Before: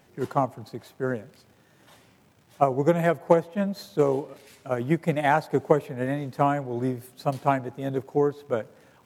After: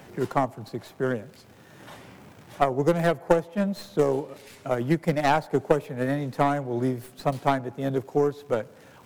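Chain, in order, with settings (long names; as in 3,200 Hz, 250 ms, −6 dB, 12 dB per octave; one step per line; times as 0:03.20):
stylus tracing distortion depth 0.17 ms
multiband upward and downward compressor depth 40%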